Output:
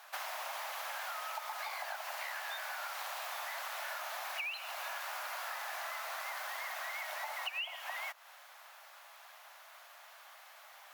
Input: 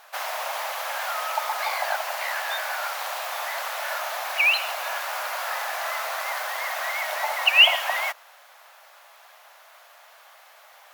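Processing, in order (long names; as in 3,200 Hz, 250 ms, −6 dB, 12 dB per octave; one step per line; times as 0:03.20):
high-pass filter 640 Hz 12 dB per octave
downward compressor 8 to 1, threshold −34 dBFS, peak gain reduction 23 dB
level −4 dB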